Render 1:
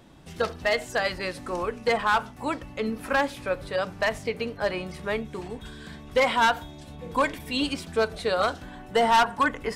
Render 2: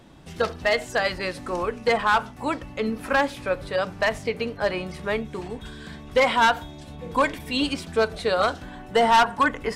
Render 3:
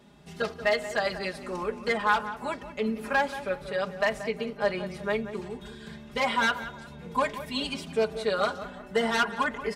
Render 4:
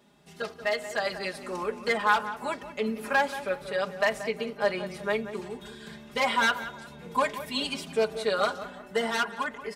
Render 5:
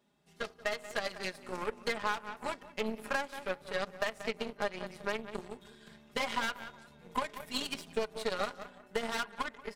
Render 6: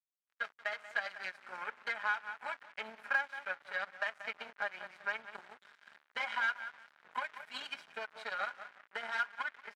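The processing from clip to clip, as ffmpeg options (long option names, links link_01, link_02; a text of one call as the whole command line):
ffmpeg -i in.wav -af "highshelf=frequency=11000:gain=-5,volume=2.5dB" out.wav
ffmpeg -i in.wav -filter_complex "[0:a]highpass=54,aecho=1:1:4.9:0.96,asplit=2[link_01][link_02];[link_02]adelay=181,lowpass=frequency=2200:poles=1,volume=-12dB,asplit=2[link_03][link_04];[link_04]adelay=181,lowpass=frequency=2200:poles=1,volume=0.39,asplit=2[link_05][link_06];[link_06]adelay=181,lowpass=frequency=2200:poles=1,volume=0.39,asplit=2[link_07][link_08];[link_08]adelay=181,lowpass=frequency=2200:poles=1,volume=0.39[link_09];[link_01][link_03][link_05][link_07][link_09]amix=inputs=5:normalize=0,volume=-7.5dB" out.wav
ffmpeg -i in.wav -af "lowshelf=frequency=130:gain=-10.5,dynaudnorm=framelen=190:gausssize=11:maxgain=5dB,highshelf=frequency=9000:gain=6,volume=-4dB" out.wav
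ffmpeg -i in.wav -af "acompressor=threshold=-27dB:ratio=8,aeval=exprs='0.141*(cos(1*acos(clip(val(0)/0.141,-1,1)))-cos(1*PI/2))+0.01*(cos(6*acos(clip(val(0)/0.141,-1,1)))-cos(6*PI/2))+0.0141*(cos(7*acos(clip(val(0)/0.141,-1,1)))-cos(7*PI/2))':channel_layout=same,volume=-2dB" out.wav
ffmpeg -i in.wav -af "aecho=1:1:1.3:0.42,acrusher=bits=7:mix=0:aa=0.5,bandpass=frequency=1600:width_type=q:width=1.8:csg=0,volume=2.5dB" out.wav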